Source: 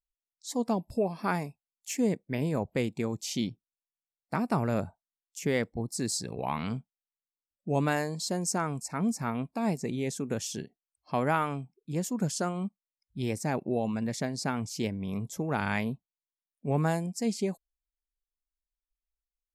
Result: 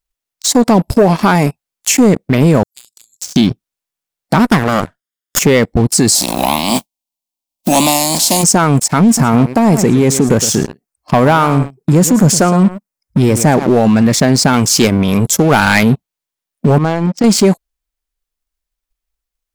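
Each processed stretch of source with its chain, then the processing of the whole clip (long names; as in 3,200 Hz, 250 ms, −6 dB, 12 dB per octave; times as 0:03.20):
0:02.63–0:03.36: inverse Chebyshev high-pass filter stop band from 1,600 Hz, stop band 60 dB + downward compressor 3 to 1, threshold −52 dBFS
0:04.39–0:05.39: lower of the sound and its delayed copy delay 0.59 ms + low-shelf EQ 160 Hz −11 dB + transient designer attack +9 dB, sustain −2 dB
0:06.14–0:08.42: compressing power law on the bin magnitudes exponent 0.44 + Butterworth band-reject 1,400 Hz, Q 2.3 + phaser with its sweep stopped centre 440 Hz, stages 6
0:09.06–0:13.78: parametric band 3,300 Hz −8 dB 0.98 octaves + single-tap delay 112 ms −15.5 dB
0:14.53–0:15.83: spectral tilt +1.5 dB per octave + hard clipping −27 dBFS
0:16.78–0:17.24: one scale factor per block 7 bits + high-frequency loss of the air 210 metres + downward compressor 5 to 1, threshold −39 dBFS
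whole clip: transient designer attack +4 dB, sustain 0 dB; leveller curve on the samples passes 3; boost into a limiter +19.5 dB; level −2 dB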